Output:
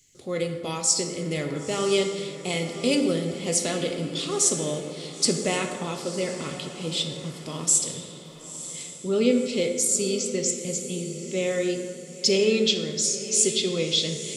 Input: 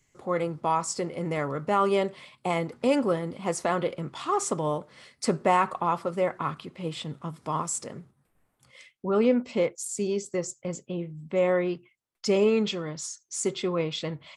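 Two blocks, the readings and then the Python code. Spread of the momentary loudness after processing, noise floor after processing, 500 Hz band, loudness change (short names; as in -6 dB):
12 LU, -41 dBFS, +0.5 dB, +3.0 dB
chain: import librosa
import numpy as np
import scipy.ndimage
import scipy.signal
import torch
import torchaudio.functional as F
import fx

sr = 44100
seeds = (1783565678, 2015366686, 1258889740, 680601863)

y = fx.curve_eq(x, sr, hz=(470.0, 990.0, 3800.0, 8300.0), db=(0, -15, 13, 11))
y = fx.echo_diffused(y, sr, ms=972, feedback_pct=44, wet_db=-12.5)
y = fx.rev_plate(y, sr, seeds[0], rt60_s=1.9, hf_ratio=0.45, predelay_ms=0, drr_db=4.5)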